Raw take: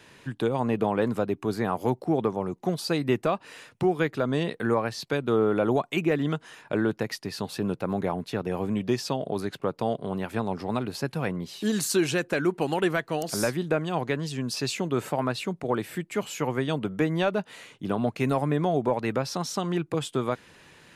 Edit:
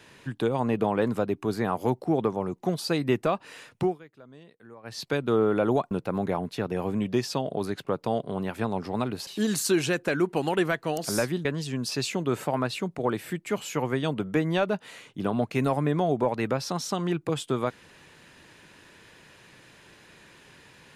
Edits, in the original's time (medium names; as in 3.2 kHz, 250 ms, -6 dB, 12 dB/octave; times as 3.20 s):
3.83–4.99 s: dip -23.5 dB, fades 0.16 s
5.91–7.66 s: delete
11.02–11.52 s: delete
13.70–14.10 s: delete